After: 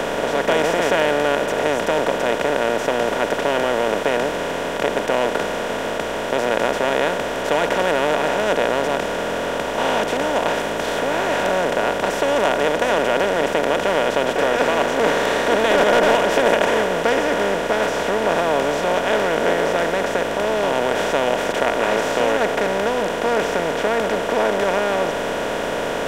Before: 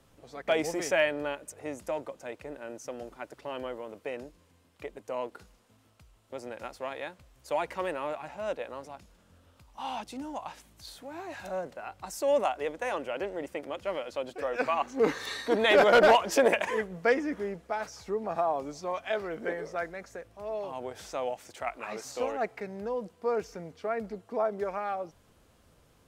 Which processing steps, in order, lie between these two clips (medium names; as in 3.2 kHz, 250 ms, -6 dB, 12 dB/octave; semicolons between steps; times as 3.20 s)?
spectral levelling over time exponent 0.2; bass shelf 220 Hz +9 dB; trim -3 dB